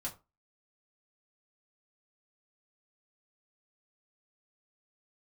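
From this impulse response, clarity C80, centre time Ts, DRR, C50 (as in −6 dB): 20.0 dB, 14 ms, −4.0 dB, 14.5 dB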